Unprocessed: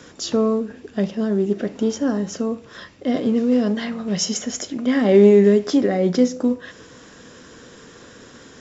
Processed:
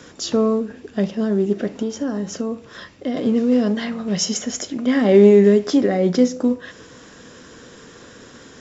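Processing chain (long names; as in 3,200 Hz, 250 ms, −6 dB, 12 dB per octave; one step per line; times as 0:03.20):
0:01.79–0:03.17: downward compressor, threshold −21 dBFS, peak gain reduction 6.5 dB
level +1 dB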